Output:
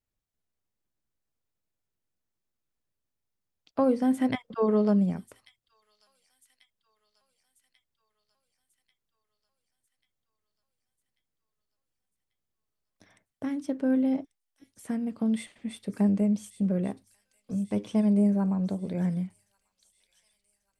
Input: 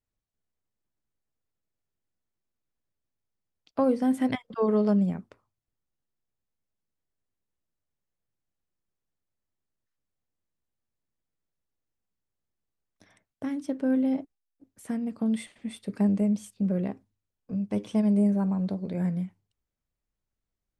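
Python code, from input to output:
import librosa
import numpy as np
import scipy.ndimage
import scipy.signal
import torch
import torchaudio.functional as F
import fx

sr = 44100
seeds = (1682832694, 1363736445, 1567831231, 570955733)

y = fx.echo_wet_highpass(x, sr, ms=1140, feedback_pct=57, hz=4500.0, wet_db=-9.5)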